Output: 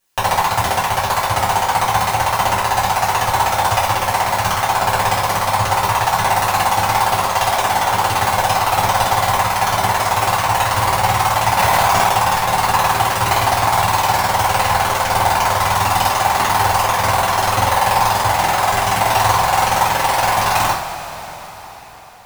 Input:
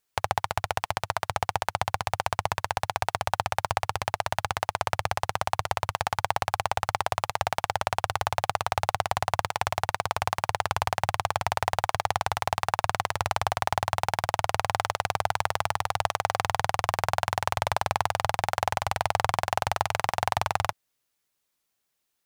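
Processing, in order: block-companded coder 3-bit; in parallel at -4 dB: overload inside the chain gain 18.5 dB; on the sum: two-slope reverb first 0.43 s, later 4.9 s, from -18 dB, DRR -10 dB; 11.59–12.09 s: level flattener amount 100%; trim -1 dB

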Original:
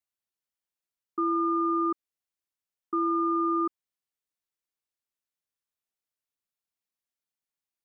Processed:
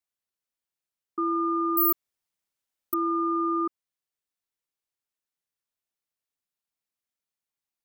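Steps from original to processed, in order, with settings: 1.77–2.94 s: careless resampling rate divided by 3×, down none, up zero stuff

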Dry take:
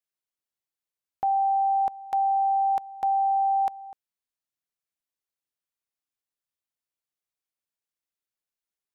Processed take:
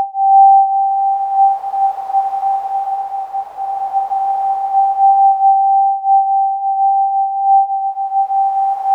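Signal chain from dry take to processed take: graphic EQ 125/250/500/1000 Hz -3/-7/+4/+5 dB; Paulstretch 8×, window 0.50 s, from 2.50 s; trim +7 dB

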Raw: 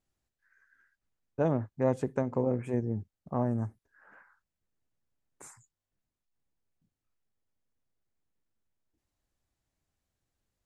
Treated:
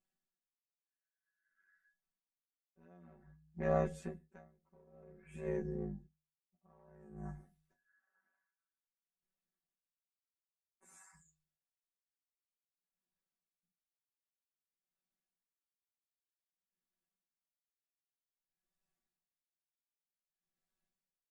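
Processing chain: single-diode clipper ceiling -22 dBFS; hum notches 60/120 Hz; gate -59 dBFS, range -6 dB; peaking EQ 1.7 kHz +3.5 dB 0.77 oct; comb 6.1 ms, depth 83%; dynamic bell 680 Hz, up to -4 dB, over -41 dBFS, Q 0.99; granular stretch 2×, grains 21 ms; feedback comb 240 Hz, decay 0.23 s, harmonics odd, mix 70%; logarithmic tremolo 0.53 Hz, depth 32 dB; trim +6 dB

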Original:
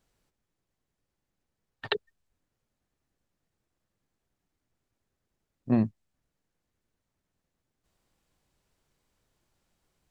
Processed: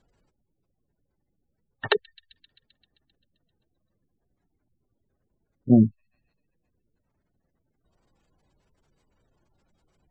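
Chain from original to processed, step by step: feedback echo behind a high-pass 131 ms, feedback 73%, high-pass 3.6 kHz, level -22 dB; spectral gate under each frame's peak -20 dB strong; low-pass that closes with the level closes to 2.9 kHz, closed at -33 dBFS; trim +8 dB

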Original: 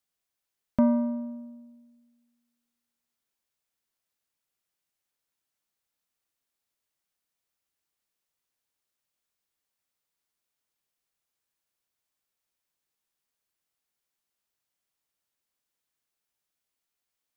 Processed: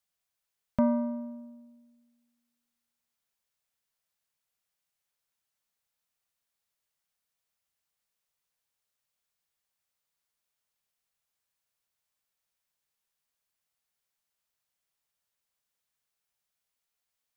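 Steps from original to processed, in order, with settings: peaking EQ 310 Hz -10 dB 0.58 oct

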